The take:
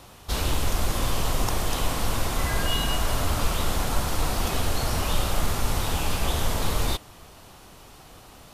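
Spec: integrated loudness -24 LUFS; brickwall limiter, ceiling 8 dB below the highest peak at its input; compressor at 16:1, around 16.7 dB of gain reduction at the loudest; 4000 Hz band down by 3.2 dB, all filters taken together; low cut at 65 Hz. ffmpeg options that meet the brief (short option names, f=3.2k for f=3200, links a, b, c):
-af "highpass=65,equalizer=f=4k:t=o:g=-4.5,acompressor=threshold=-41dB:ratio=16,volume=23.5dB,alimiter=limit=-14.5dB:level=0:latency=1"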